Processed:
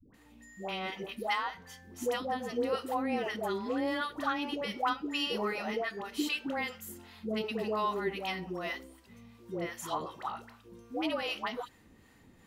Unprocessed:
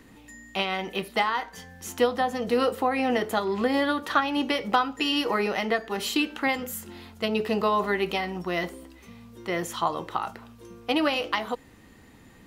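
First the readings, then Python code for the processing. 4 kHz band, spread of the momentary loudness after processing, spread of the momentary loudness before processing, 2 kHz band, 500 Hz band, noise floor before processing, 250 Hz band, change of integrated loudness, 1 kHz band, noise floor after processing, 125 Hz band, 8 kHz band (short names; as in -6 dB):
-7.5 dB, 12 LU, 12 LU, -8.0 dB, -8.0 dB, -52 dBFS, -8.0 dB, -8.0 dB, -8.0 dB, -61 dBFS, -7.5 dB, -8.0 dB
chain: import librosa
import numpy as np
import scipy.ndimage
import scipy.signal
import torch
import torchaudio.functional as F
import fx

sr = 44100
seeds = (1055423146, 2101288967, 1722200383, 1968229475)

y = fx.dispersion(x, sr, late='highs', ms=141.0, hz=610.0)
y = fx.harmonic_tremolo(y, sr, hz=2.6, depth_pct=50, crossover_hz=670.0)
y = F.gain(torch.from_numpy(y), -5.5).numpy()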